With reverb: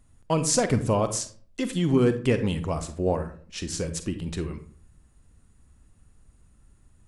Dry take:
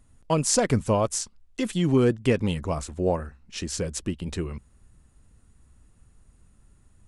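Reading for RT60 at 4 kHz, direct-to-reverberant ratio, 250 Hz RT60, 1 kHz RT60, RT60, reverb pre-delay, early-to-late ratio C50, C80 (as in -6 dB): 0.30 s, 9.5 dB, 0.55 s, 0.45 s, 0.50 s, 37 ms, 11.5 dB, 16.5 dB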